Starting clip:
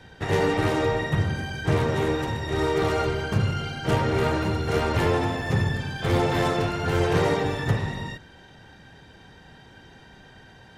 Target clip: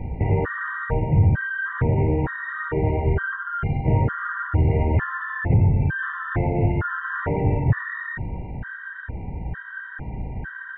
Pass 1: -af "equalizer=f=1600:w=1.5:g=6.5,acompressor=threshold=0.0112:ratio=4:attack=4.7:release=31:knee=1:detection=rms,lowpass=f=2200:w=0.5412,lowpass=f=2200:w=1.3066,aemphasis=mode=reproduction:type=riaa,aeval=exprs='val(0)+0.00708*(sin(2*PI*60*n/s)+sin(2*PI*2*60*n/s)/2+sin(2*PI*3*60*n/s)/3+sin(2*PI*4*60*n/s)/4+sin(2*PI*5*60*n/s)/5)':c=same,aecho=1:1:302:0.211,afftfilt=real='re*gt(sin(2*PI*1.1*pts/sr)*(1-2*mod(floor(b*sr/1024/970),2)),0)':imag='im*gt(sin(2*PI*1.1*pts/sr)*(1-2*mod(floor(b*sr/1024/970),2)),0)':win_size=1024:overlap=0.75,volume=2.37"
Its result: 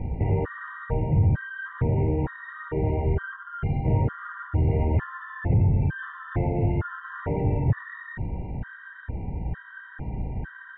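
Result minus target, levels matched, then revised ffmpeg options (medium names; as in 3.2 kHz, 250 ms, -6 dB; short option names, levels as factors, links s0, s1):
2 kHz band -6.0 dB; compression: peak gain reduction +3.5 dB
-af "equalizer=f=1600:w=1.5:g=15,acompressor=threshold=0.0237:ratio=4:attack=4.7:release=31:knee=1:detection=rms,lowpass=f=2200:w=0.5412,lowpass=f=2200:w=1.3066,aemphasis=mode=reproduction:type=riaa,aeval=exprs='val(0)+0.00708*(sin(2*PI*60*n/s)+sin(2*PI*2*60*n/s)/2+sin(2*PI*3*60*n/s)/3+sin(2*PI*4*60*n/s)/4+sin(2*PI*5*60*n/s)/5)':c=same,aecho=1:1:302:0.211,afftfilt=real='re*gt(sin(2*PI*1.1*pts/sr)*(1-2*mod(floor(b*sr/1024/970),2)),0)':imag='im*gt(sin(2*PI*1.1*pts/sr)*(1-2*mod(floor(b*sr/1024/970),2)),0)':win_size=1024:overlap=0.75,volume=2.37"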